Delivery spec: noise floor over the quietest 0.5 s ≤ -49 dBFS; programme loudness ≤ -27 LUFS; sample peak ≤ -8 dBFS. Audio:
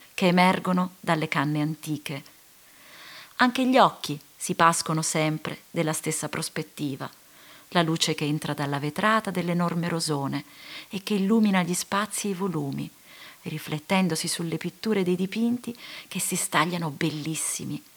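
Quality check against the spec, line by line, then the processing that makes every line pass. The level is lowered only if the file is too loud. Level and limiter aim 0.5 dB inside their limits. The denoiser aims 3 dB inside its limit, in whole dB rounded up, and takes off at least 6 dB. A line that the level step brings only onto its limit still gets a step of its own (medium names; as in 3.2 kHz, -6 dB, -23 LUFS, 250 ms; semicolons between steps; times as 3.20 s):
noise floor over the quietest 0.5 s -54 dBFS: pass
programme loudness -25.5 LUFS: fail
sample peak -5.0 dBFS: fail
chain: trim -2 dB; peak limiter -8.5 dBFS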